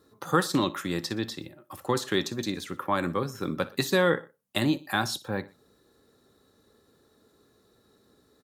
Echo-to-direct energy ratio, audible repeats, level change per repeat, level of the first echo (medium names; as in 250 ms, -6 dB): -18.5 dB, 2, -6.5 dB, -19.5 dB